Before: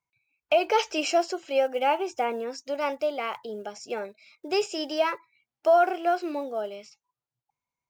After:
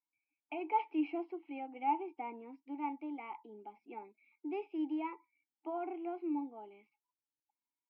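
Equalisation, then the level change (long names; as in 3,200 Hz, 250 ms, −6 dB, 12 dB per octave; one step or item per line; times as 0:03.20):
formant filter u
band-pass filter 200–4,800 Hz
high-frequency loss of the air 430 metres
+2.0 dB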